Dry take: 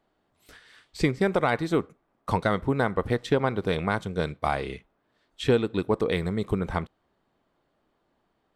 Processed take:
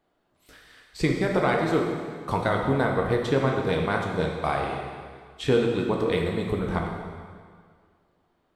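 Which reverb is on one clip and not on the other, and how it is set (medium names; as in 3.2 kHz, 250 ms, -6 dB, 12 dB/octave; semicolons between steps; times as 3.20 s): plate-style reverb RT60 1.9 s, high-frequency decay 0.9×, DRR 0 dB; trim -1.5 dB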